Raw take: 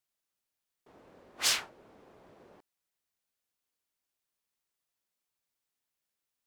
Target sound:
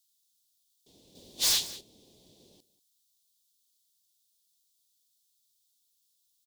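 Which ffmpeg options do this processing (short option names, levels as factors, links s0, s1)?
-filter_complex "[0:a]firequalizer=gain_entry='entry(200,0);entry(1400,-26);entry(3500,14)':delay=0.05:min_phase=1,asoftclip=type=tanh:threshold=0.0316,bandreject=f=1300:w=8.3,aecho=1:1:187:0.133,asettb=1/sr,asplit=3[s0][s1][s2];[s0]atrim=end=1.154[s3];[s1]atrim=start=1.15:end=1.81,asetpts=PTS-STARTPTS,afade=t=in:d=0.004:c=qsin,afade=t=out:st=0.656:d=0.004:c=qsin,acontrast=69[s4];[s2]atrim=start=1.806[s5];[s3][s4]acrossfade=d=0.004:c1=hsin:c2=qsin[s6];[s6][s5]acrossfade=d=0.004:c1=qsin:c2=hsin"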